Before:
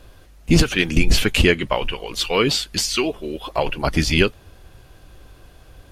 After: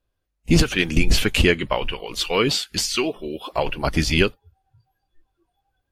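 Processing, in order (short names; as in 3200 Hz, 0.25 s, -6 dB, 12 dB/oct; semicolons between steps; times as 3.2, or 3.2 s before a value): spectral noise reduction 29 dB; gain -1.5 dB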